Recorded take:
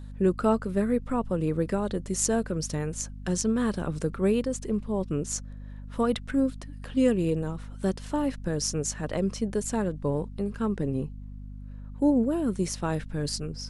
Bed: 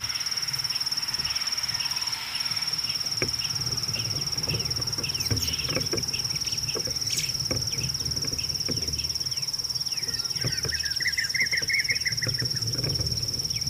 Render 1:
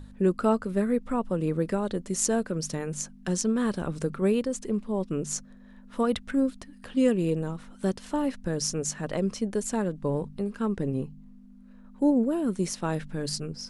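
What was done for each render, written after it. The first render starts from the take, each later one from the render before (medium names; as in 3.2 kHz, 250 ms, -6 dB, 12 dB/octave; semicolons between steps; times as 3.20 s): de-hum 50 Hz, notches 3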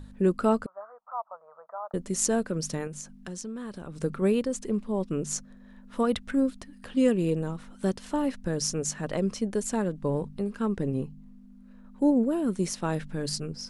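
0.66–1.94 s: elliptic band-pass 650–1300 Hz, stop band 50 dB; 2.87–4.03 s: compression 2.5:1, threshold -39 dBFS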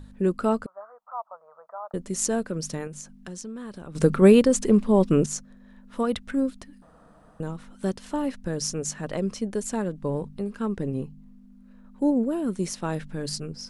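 3.95–5.26 s: gain +10 dB; 6.82–7.40 s: room tone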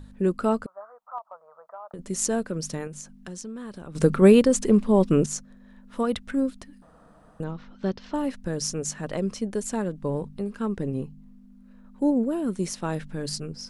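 1.18–1.99 s: compression, threshold -35 dBFS; 7.44–8.14 s: steep low-pass 5.5 kHz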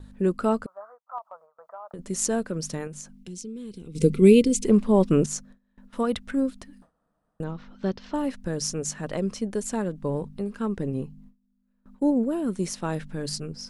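3.18–4.65 s: time-frequency box 500–2000 Hz -19 dB; gate with hold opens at -40 dBFS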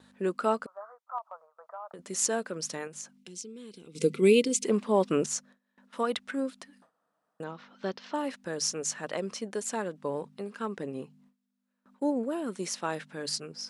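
frequency weighting A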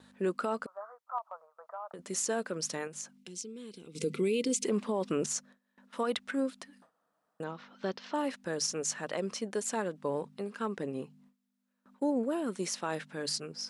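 peak limiter -21.5 dBFS, peak gain reduction 11 dB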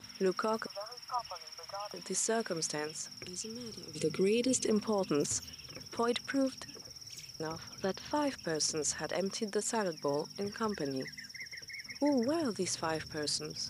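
add bed -20.5 dB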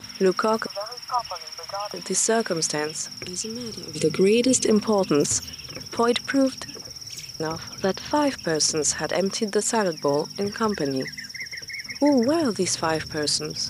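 trim +11 dB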